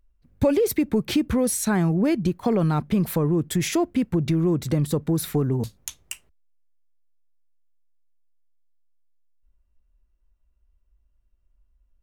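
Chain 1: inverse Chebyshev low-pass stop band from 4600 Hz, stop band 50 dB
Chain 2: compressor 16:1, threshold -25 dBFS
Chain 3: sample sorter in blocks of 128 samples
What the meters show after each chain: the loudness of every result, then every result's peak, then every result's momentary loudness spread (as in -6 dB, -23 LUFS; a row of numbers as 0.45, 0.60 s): -23.5, -30.5, -22.5 LUFS; -11.0, -14.0, -11.0 dBFS; 3, 5, 7 LU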